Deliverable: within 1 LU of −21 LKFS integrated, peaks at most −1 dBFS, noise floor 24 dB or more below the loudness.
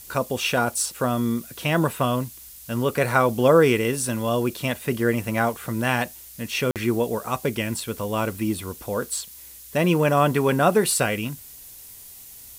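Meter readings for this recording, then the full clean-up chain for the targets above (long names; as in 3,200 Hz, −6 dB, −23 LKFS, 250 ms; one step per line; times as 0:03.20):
number of dropouts 1; longest dropout 48 ms; background noise floor −44 dBFS; target noise floor −47 dBFS; integrated loudness −23.0 LKFS; sample peak −4.5 dBFS; target loudness −21.0 LKFS
→ repair the gap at 0:06.71, 48 ms
broadband denoise 6 dB, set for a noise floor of −44 dBFS
level +2 dB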